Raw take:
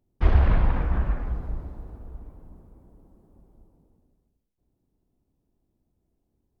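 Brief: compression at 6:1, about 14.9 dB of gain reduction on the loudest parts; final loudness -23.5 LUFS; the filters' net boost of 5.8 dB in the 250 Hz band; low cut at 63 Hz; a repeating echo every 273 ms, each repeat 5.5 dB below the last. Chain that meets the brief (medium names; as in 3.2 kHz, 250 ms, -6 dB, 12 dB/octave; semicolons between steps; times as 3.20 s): high-pass 63 Hz; peaking EQ 250 Hz +8 dB; compression 6:1, threshold -32 dBFS; feedback delay 273 ms, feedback 53%, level -5.5 dB; trim +14.5 dB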